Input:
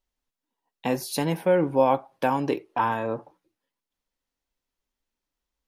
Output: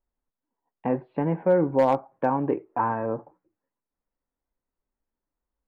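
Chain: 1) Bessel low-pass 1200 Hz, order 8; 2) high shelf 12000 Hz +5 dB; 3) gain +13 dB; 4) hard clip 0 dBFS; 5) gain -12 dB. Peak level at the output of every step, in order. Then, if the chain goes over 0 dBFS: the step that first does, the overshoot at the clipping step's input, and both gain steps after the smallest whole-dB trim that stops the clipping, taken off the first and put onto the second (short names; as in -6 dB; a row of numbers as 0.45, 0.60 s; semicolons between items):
-9.0, -9.0, +4.0, 0.0, -12.0 dBFS; step 3, 4.0 dB; step 3 +9 dB, step 5 -8 dB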